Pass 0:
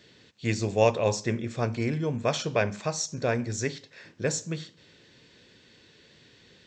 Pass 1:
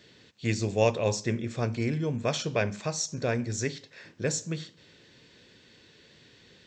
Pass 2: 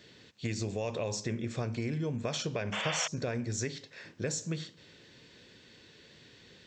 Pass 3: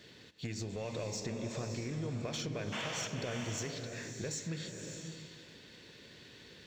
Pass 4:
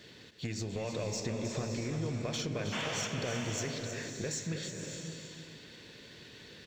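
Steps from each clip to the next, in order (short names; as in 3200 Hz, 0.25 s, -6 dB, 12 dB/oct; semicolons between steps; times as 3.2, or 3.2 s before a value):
dynamic EQ 930 Hz, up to -4 dB, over -38 dBFS, Q 0.74
limiter -19.5 dBFS, peak gain reduction 9.5 dB; compressor, threshold -30 dBFS, peak gain reduction 5.5 dB; painted sound noise, 2.72–3.08, 450–3600 Hz -35 dBFS
compressor, threshold -36 dBFS, peak gain reduction 9 dB; sample leveller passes 1; bloom reverb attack 0.6 s, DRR 4 dB; gain -3 dB
echo 0.316 s -9 dB; gain +2.5 dB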